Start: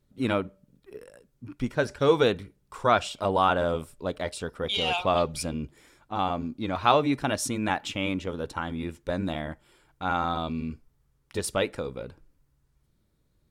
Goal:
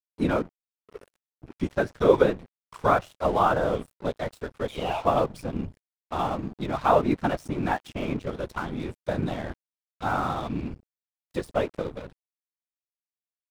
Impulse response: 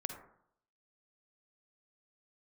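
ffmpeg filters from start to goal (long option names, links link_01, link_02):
-filter_complex "[0:a]lowpass=11000,equalizer=frequency=69:width=7.8:gain=13,bandreject=frequency=6900:width=29,acrossover=split=1800[link_01][link_02];[link_02]acompressor=threshold=-44dB:ratio=12[link_03];[link_01][link_03]amix=inputs=2:normalize=0,afftfilt=real='hypot(re,im)*cos(2*PI*random(0))':imag='hypot(re,im)*sin(2*PI*random(1))':win_size=512:overlap=0.75,aeval=exprs='sgn(val(0))*max(abs(val(0))-0.00335,0)':channel_layout=same,volume=8dB"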